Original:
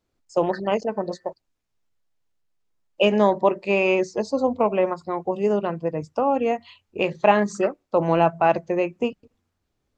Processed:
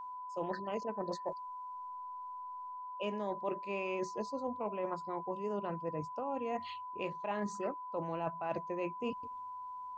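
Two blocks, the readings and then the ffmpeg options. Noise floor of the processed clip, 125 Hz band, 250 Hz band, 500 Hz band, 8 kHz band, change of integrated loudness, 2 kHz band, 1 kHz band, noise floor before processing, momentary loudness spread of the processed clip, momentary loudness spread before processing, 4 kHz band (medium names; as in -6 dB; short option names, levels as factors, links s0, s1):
-45 dBFS, -15.5 dB, -16.0 dB, -17.0 dB, no reading, -17.0 dB, -18.0 dB, -12.5 dB, -77 dBFS, 7 LU, 10 LU, -17.0 dB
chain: -af "areverse,acompressor=threshold=0.02:ratio=6,areverse,aeval=exprs='val(0)+0.01*sin(2*PI*1000*n/s)':c=same,volume=0.794"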